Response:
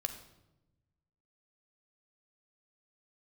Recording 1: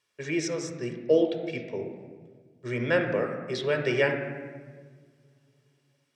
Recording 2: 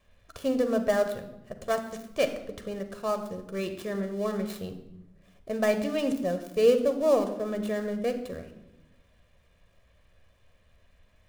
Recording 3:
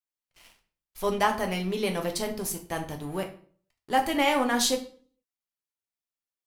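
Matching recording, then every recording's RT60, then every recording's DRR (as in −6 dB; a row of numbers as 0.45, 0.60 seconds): 2; 1.6, 0.95, 0.45 seconds; 4.5, 6.5, 3.0 decibels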